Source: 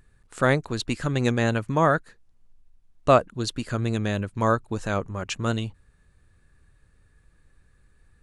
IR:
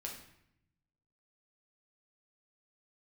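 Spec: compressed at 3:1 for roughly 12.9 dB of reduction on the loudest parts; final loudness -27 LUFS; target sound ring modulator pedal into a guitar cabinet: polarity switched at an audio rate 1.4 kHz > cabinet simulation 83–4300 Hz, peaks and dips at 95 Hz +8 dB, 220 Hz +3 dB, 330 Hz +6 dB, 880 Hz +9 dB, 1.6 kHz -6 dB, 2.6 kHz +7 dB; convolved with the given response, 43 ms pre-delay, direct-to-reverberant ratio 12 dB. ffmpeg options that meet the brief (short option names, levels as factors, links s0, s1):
-filter_complex "[0:a]acompressor=threshold=0.0355:ratio=3,asplit=2[s0][s1];[1:a]atrim=start_sample=2205,adelay=43[s2];[s1][s2]afir=irnorm=-1:irlink=0,volume=0.299[s3];[s0][s3]amix=inputs=2:normalize=0,aeval=exprs='val(0)*sgn(sin(2*PI*1400*n/s))':c=same,highpass=83,equalizer=f=95:t=q:w=4:g=8,equalizer=f=220:t=q:w=4:g=3,equalizer=f=330:t=q:w=4:g=6,equalizer=f=880:t=q:w=4:g=9,equalizer=f=1600:t=q:w=4:g=-6,equalizer=f=2600:t=q:w=4:g=7,lowpass=f=4300:w=0.5412,lowpass=f=4300:w=1.3066,volume=1.41"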